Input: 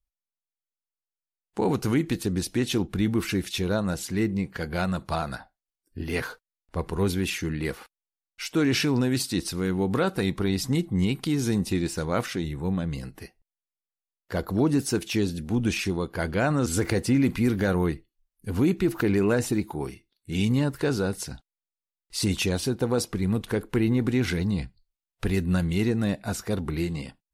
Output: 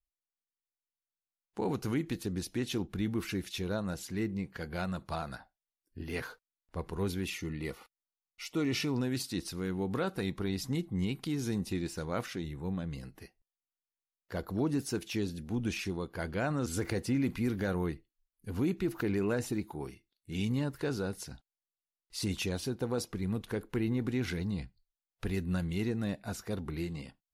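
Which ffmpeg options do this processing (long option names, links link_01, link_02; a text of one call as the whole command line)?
ffmpeg -i in.wav -filter_complex "[0:a]asettb=1/sr,asplit=3[link_01][link_02][link_03];[link_01]atrim=end=7.264[link_04];[link_02]atrim=start=7.26:end=8.96,asetpts=PTS-STARTPTS,afade=type=in:duration=0.004:curve=qsin,afade=type=out:start_time=1.696:duration=0.004:curve=qsin,asuperstop=centerf=1600:order=8:qfactor=5.9[link_05];[link_03]atrim=start=8.956[link_06];[link_04][link_05]acrossfade=duration=0.004:curve1=hsin:curve2=qsin[link_07];[link_07][link_06]acrossfade=duration=0.004:curve1=qsin:curve2=hsin,equalizer=frequency=8300:width=7.2:gain=-5.5,volume=-8.5dB" out.wav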